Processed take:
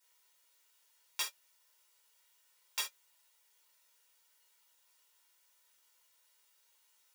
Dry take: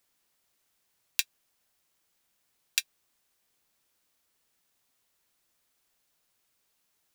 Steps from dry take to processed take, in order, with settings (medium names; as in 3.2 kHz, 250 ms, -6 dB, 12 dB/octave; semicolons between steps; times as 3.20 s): comb filter that takes the minimum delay 2.1 ms; Bessel high-pass 730 Hz, order 2; peak limiter -18 dBFS, peak gain reduction 10.5 dB; gated-style reverb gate 100 ms falling, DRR -7 dB; trim -2 dB